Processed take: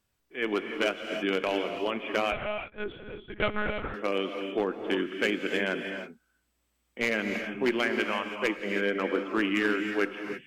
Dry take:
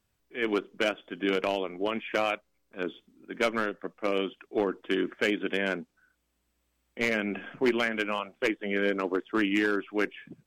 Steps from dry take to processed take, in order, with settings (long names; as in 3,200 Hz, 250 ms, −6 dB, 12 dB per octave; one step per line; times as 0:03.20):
low-shelf EQ 480 Hz −2.5 dB
reverb whose tail is shaped and stops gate 350 ms rising, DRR 5.5 dB
0:02.32–0:03.94: one-pitch LPC vocoder at 8 kHz 210 Hz